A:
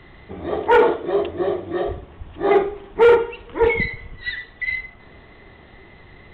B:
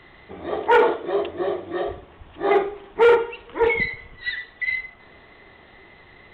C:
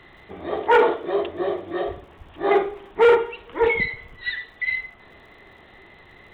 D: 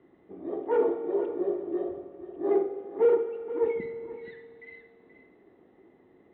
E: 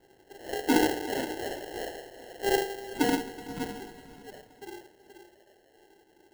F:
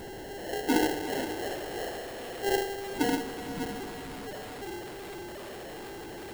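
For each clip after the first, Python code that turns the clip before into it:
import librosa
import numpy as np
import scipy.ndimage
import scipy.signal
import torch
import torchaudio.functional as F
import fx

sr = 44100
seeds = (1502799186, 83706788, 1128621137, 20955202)

y1 = fx.low_shelf(x, sr, hz=280.0, db=-9.5)
y2 = fx.dmg_crackle(y1, sr, seeds[0], per_s=91.0, level_db=-52.0)
y3 = fx.bandpass_q(y2, sr, hz=310.0, q=2.3)
y3 = y3 + 10.0 ** (-12.5 / 20.0) * np.pad(y3, (int(478 * sr / 1000.0), 0))[:len(y3)]
y3 = fx.rev_fdn(y3, sr, rt60_s=2.8, lf_ratio=1.0, hf_ratio=0.9, size_ms=12.0, drr_db=9.0)
y3 = F.gain(torch.from_numpy(y3), -1.0).numpy()
y4 = fx.filter_sweep_highpass(y3, sr, from_hz=820.0, to_hz=2100.0, start_s=2.59, end_s=6.08, q=6.8)
y4 = fx.sample_hold(y4, sr, seeds[1], rate_hz=1200.0, jitter_pct=0)
y4 = fx.echo_feedback(y4, sr, ms=374, feedback_pct=53, wet_db=-19)
y5 = y4 + 0.5 * 10.0 ** (-33.0 / 20.0) * np.sign(y4)
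y5 = F.gain(torch.from_numpy(y5), -3.0).numpy()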